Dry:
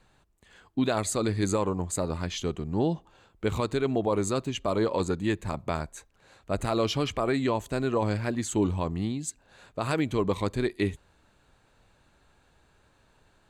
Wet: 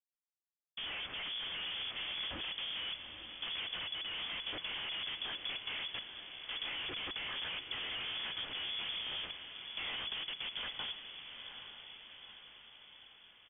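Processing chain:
fade in at the beginning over 1.73 s
high-pass filter 43 Hz 12 dB per octave
parametric band 220 Hz −11.5 dB 0.75 octaves
comb filter 2.3 ms, depth 83%
hum removal 263.2 Hz, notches 9
downward compressor 8 to 1, threshold −32 dBFS, peak gain reduction 12.5 dB
centre clipping without the shift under −37.5 dBFS
phase-vocoder pitch shift with formants kept −10.5 semitones
comparator with hysteresis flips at −44.5 dBFS
feedback delay with all-pass diffusion 852 ms, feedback 57%, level −8.5 dB
voice inversion scrambler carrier 3,400 Hz
level −1.5 dB

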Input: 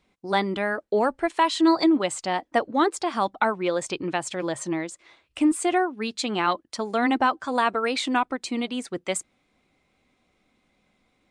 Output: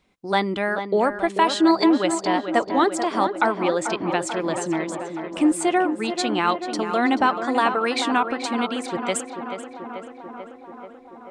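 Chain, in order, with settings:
tape delay 437 ms, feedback 80%, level −7.5 dB, low-pass 2,400 Hz
level +2 dB

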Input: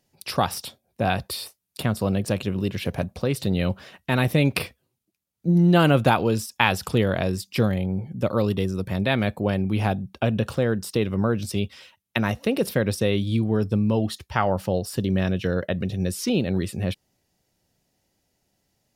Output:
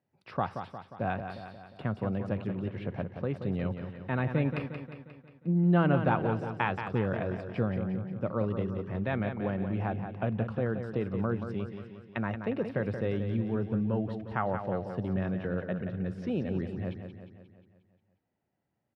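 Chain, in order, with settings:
Chebyshev band-pass filter 100–1,600 Hz, order 2
repeating echo 178 ms, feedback 55%, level −8 dB
level −8 dB

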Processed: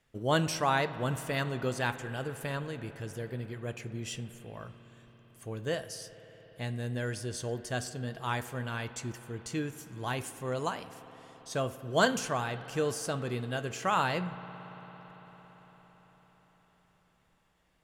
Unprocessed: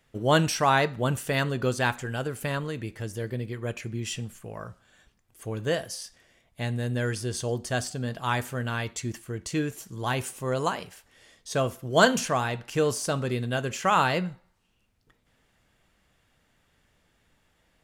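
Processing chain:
tape wow and flutter 16 cents
convolution reverb RT60 5.6 s, pre-delay 56 ms, DRR 12.5 dB
level −6 dB

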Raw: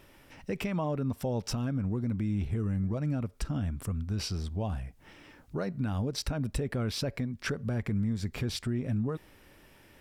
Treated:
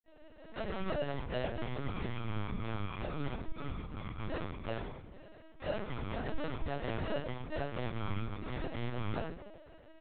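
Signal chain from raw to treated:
gate on every frequency bin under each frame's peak −20 dB strong
dynamic equaliser 2,000 Hz, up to +4 dB, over −51 dBFS, Q 0.82
in parallel at −2 dB: downward compressor 4 to 1, threshold −47 dBFS, peak gain reduction 17 dB
on the sum: decimation without filtering 39×
echo with shifted repeats 98 ms, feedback 61%, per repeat +59 Hz, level −14 dB
convolution reverb RT60 0.45 s, pre-delay 49 ms
linear-prediction vocoder at 8 kHz pitch kept
level −3.5 dB

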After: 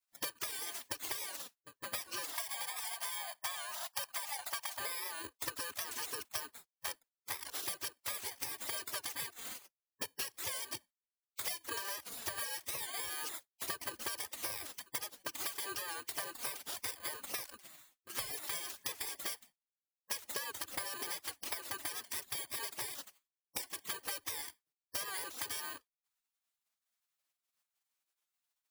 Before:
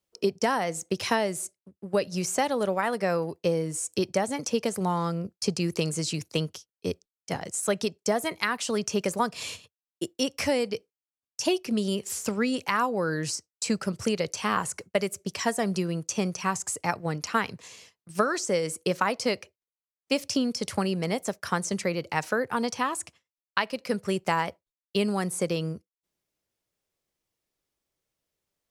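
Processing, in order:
samples in bit-reversed order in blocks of 32 samples
gate on every frequency bin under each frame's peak −15 dB weak
0:02.33–0:04.79: low shelf with overshoot 530 Hz −10.5 dB, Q 3
downward compressor 8 to 1, threshold −40 dBFS, peak gain reduction 14.5 dB
flanger swept by the level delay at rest 8.8 ms, full sweep at −32 dBFS
wow of a warped record 78 rpm, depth 100 cents
level +7 dB

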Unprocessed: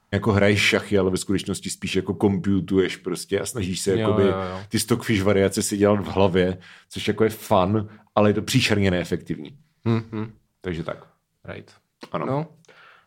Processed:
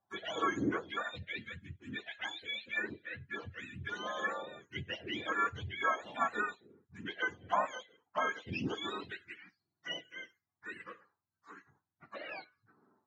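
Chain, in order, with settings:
frequency axis turned over on the octave scale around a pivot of 820 Hz
three-way crossover with the lows and the highs turned down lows −17 dB, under 360 Hz, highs −21 dB, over 3,200 Hz
phaser swept by the level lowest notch 470 Hz, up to 3,800 Hz, full sweep at −20 dBFS
level −8 dB

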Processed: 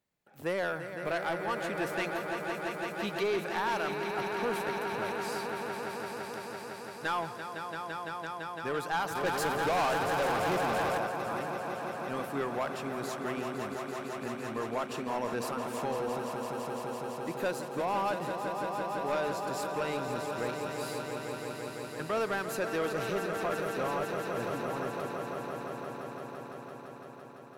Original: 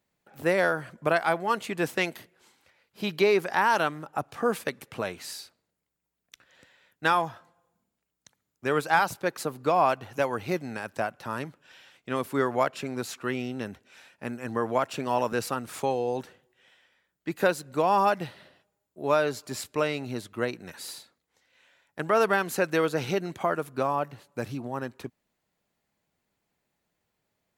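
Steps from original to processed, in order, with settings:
echo that builds up and dies away 169 ms, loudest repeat 5, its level −10 dB
soft clipping −18.5 dBFS, distortion −14 dB
0:09.15–0:10.98: leveller curve on the samples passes 2
level −6 dB

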